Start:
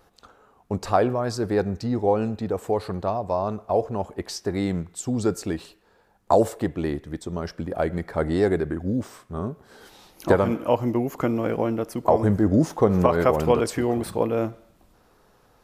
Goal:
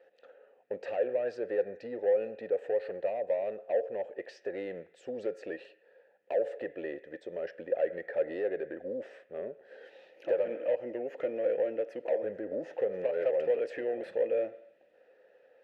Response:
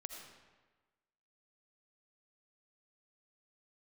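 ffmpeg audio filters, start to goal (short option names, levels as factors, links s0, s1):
-filter_complex "[0:a]acompressor=threshold=0.0794:ratio=4,asplit=2[s0][s1];[s1]highpass=f=720:p=1,volume=7.94,asoftclip=type=tanh:threshold=0.266[s2];[s0][s2]amix=inputs=2:normalize=0,lowpass=f=1500:p=1,volume=0.501,asplit=3[s3][s4][s5];[s3]bandpass=f=530:t=q:w=8,volume=1[s6];[s4]bandpass=f=1840:t=q:w=8,volume=0.501[s7];[s5]bandpass=f=2480:t=q:w=8,volume=0.355[s8];[s6][s7][s8]amix=inputs=3:normalize=0"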